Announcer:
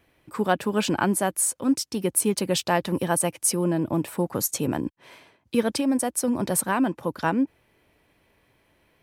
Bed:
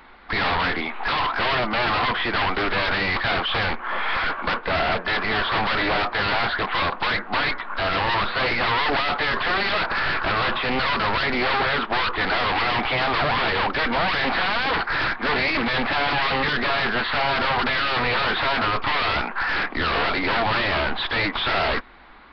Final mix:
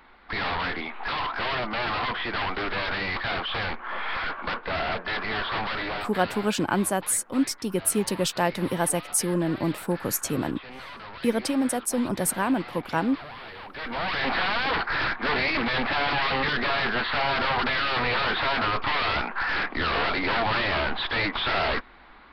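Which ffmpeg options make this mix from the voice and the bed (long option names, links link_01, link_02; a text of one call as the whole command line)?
ffmpeg -i stem1.wav -i stem2.wav -filter_complex "[0:a]adelay=5700,volume=-1.5dB[link_01];[1:a]volume=10dB,afade=type=out:start_time=5.54:duration=0.98:silence=0.223872,afade=type=in:start_time=13.68:duration=0.63:silence=0.158489[link_02];[link_01][link_02]amix=inputs=2:normalize=0" out.wav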